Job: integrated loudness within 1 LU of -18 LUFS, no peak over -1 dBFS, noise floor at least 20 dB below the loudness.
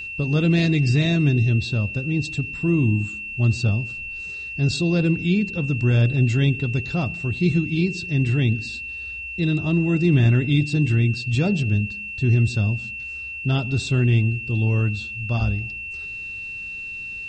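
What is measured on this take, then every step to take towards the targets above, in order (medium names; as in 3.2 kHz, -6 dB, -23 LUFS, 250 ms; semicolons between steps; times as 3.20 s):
steady tone 2.7 kHz; tone level -30 dBFS; loudness -22.0 LUFS; peak level -6.5 dBFS; loudness target -18.0 LUFS
-> band-stop 2.7 kHz, Q 30; trim +4 dB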